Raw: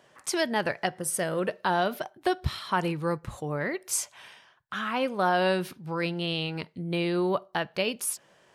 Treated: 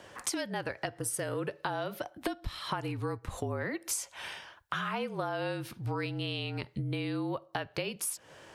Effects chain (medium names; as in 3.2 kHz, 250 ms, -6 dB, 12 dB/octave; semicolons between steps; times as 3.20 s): compression 16:1, threshold -39 dBFS, peak gain reduction 19.5 dB; frequency shift -39 Hz; trim +8 dB